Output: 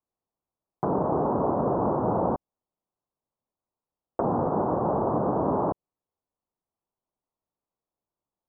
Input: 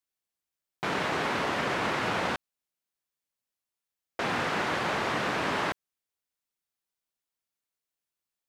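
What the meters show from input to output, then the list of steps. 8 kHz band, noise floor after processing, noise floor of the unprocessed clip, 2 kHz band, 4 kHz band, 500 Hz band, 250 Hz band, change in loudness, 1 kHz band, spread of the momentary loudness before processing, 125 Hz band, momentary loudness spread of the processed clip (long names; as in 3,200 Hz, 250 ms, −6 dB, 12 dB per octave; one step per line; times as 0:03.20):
below −35 dB, below −85 dBFS, below −85 dBFS, −22.0 dB, below −40 dB, +7.5 dB, +8.0 dB, +3.0 dB, +3.0 dB, 6 LU, +8.0 dB, 6 LU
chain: treble cut that deepens with the level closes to 870 Hz, closed at −30 dBFS
Butterworth low-pass 1,100 Hz 36 dB per octave
level +8 dB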